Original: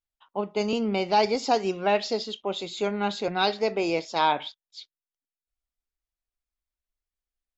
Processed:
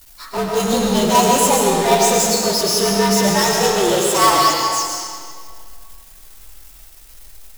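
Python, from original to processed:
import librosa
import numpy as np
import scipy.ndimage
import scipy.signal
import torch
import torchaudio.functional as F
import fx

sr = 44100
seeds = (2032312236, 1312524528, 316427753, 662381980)

p1 = fx.partial_stretch(x, sr, pct=113)
p2 = fx.power_curve(p1, sr, exponent=0.5)
p3 = fx.high_shelf(p2, sr, hz=6400.0, db=11.5)
p4 = fx.level_steps(p3, sr, step_db=17)
p5 = p3 + (p4 * 10.0 ** (-2.0 / 20.0))
y = fx.rev_freeverb(p5, sr, rt60_s=2.1, hf_ratio=0.85, predelay_ms=70, drr_db=-1.0)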